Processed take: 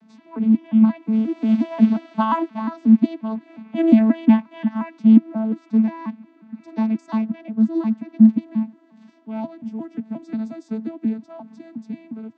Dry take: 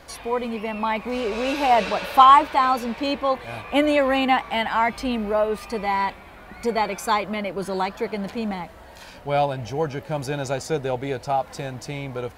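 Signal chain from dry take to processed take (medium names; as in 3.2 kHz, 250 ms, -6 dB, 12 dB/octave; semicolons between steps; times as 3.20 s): vocoder on a broken chord bare fifth, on A3, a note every 178 ms; resonant low shelf 340 Hz +9.5 dB, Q 3; upward expansion 1.5:1, over -23 dBFS; trim -2 dB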